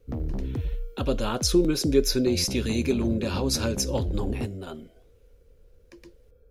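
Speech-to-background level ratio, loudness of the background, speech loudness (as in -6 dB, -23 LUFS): 7.5 dB, -33.5 LUFS, -26.0 LUFS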